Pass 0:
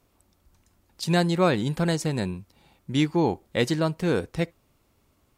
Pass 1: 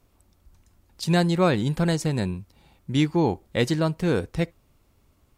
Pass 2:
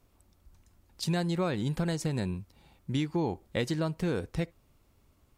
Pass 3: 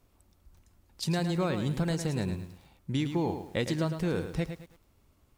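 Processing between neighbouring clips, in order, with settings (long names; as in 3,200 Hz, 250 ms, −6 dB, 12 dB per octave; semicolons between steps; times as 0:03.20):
low-shelf EQ 94 Hz +9 dB
downward compressor 6 to 1, threshold −23 dBFS, peak gain reduction 8 dB; level −3 dB
feedback echo at a low word length 108 ms, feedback 35%, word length 9 bits, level −8.5 dB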